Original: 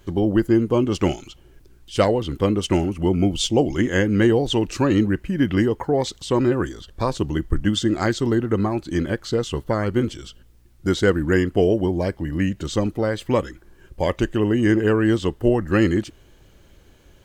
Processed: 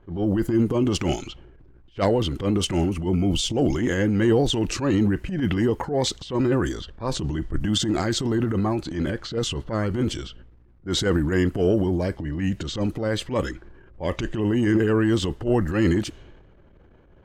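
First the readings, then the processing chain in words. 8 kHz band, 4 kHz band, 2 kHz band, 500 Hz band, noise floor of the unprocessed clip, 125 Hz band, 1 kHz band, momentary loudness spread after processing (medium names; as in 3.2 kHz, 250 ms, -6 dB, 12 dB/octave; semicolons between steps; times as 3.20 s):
+1.5 dB, +1.0 dB, -4.0 dB, -4.0 dB, -52 dBFS, -1.5 dB, -3.5 dB, 8 LU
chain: transient shaper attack -11 dB, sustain +7 dB; level-controlled noise filter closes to 1.3 kHz, open at -18.5 dBFS; trim -1.5 dB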